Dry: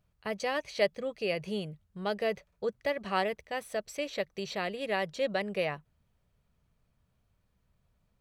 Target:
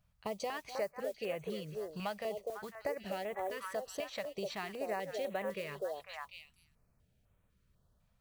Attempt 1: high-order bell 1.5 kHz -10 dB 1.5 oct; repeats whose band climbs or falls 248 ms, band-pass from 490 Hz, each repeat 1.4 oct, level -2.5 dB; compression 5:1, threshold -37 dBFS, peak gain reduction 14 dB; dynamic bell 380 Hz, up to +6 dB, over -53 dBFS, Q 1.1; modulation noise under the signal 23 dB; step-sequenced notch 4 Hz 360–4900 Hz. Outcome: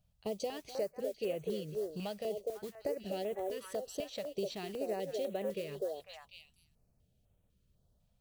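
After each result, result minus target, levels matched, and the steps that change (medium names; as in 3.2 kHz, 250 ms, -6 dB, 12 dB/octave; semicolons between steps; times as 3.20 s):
2 kHz band -9.0 dB; 1 kHz band -6.0 dB
remove: high-order bell 1.5 kHz -10 dB 1.5 oct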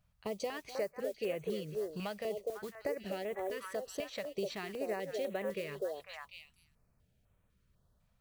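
1 kHz band -4.5 dB
change: dynamic bell 870 Hz, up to +6 dB, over -53 dBFS, Q 1.1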